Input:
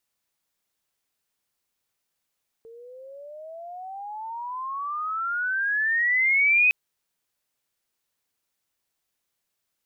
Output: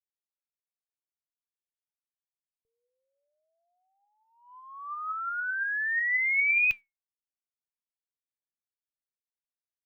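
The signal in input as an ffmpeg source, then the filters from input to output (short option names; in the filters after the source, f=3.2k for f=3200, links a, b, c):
-f lavfi -i "aevalsrc='pow(10,(-15+27.5*(t/4.06-1))/20)*sin(2*PI*449*4.06/(30*log(2)/12)*(exp(30*log(2)/12*t/4.06)-1))':d=4.06:s=44100"
-af "agate=range=-32dB:threshold=-31dB:ratio=16:detection=peak,flanger=delay=3.1:depth=2:regen=85:speed=0.79:shape=sinusoidal,asubboost=boost=9.5:cutoff=130"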